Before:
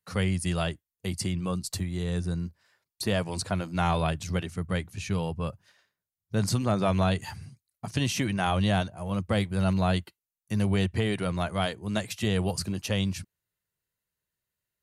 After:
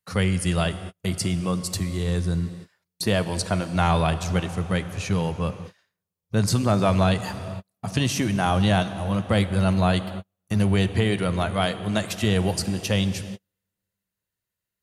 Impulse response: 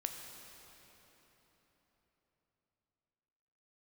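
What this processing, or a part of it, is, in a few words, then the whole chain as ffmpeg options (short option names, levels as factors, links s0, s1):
keyed gated reverb: -filter_complex "[0:a]asettb=1/sr,asplit=3[s0][s1][s2];[s0]atrim=end=8.064[s3];[s1]atrim=start=8.06:end=8.63,asetpts=PTS-STARTPTS,afade=t=in:d=0.004:c=qsin,afade=t=out:st=0.566:d=0.004:c=qsin,equalizer=f=2600:w=0.96:g=-4[s4];[s2]atrim=start=8.626[s5];[s3][s4]acrossfade=d=0.004:c1=hsin:c2=qsin[s6];[s6][s5]acrossfade=d=0.004:c1=qsin:c2=hsin,asplit=3[s7][s8][s9];[1:a]atrim=start_sample=2205[s10];[s8][s10]afir=irnorm=-1:irlink=0[s11];[s9]apad=whole_len=653669[s12];[s11][s12]sidechaingate=range=0.00501:threshold=0.00224:ratio=16:detection=peak,volume=0.891[s13];[s7][s13]amix=inputs=2:normalize=0"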